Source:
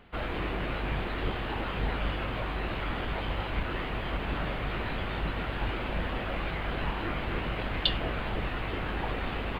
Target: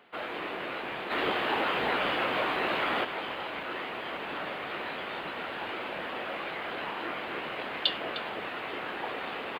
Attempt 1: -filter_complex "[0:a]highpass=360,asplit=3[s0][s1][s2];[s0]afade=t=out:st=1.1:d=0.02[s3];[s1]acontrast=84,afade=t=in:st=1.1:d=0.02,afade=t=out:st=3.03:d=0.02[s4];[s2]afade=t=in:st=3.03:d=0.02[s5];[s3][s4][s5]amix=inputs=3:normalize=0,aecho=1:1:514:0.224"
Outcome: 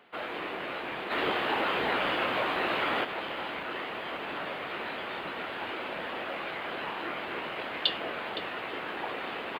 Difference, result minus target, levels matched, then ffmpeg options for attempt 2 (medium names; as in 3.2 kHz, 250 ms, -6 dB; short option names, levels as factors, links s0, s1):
echo 209 ms late
-filter_complex "[0:a]highpass=360,asplit=3[s0][s1][s2];[s0]afade=t=out:st=1.1:d=0.02[s3];[s1]acontrast=84,afade=t=in:st=1.1:d=0.02,afade=t=out:st=3.03:d=0.02[s4];[s2]afade=t=in:st=3.03:d=0.02[s5];[s3][s4][s5]amix=inputs=3:normalize=0,aecho=1:1:305:0.224"